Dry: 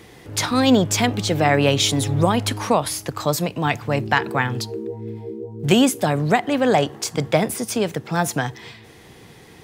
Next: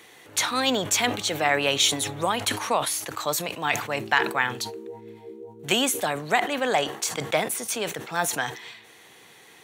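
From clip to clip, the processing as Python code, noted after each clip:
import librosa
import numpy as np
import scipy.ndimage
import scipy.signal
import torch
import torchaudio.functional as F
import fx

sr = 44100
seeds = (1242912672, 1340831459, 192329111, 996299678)

y = fx.highpass(x, sr, hz=1100.0, slope=6)
y = fx.notch(y, sr, hz=5000.0, q=5.9)
y = fx.sustainer(y, sr, db_per_s=100.0)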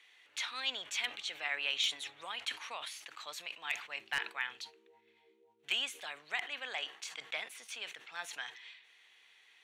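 y = fx.bandpass_q(x, sr, hz=2700.0, q=1.5)
y = 10.0 ** (-13.0 / 20.0) * (np.abs((y / 10.0 ** (-13.0 / 20.0) + 3.0) % 4.0 - 2.0) - 1.0)
y = y * librosa.db_to_amplitude(-8.0)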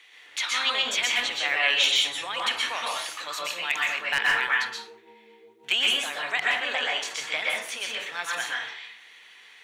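y = fx.rev_plate(x, sr, seeds[0], rt60_s=0.57, hf_ratio=0.55, predelay_ms=110, drr_db=-3.5)
y = y * librosa.db_to_amplitude(9.0)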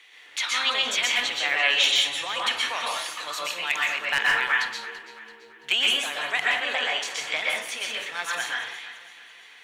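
y = fx.echo_feedback(x, sr, ms=335, feedback_pct=45, wet_db=-15.5)
y = y * librosa.db_to_amplitude(1.0)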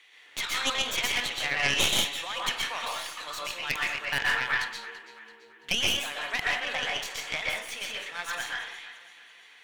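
y = fx.tracing_dist(x, sr, depth_ms=0.11)
y = y * librosa.db_to_amplitude(-4.5)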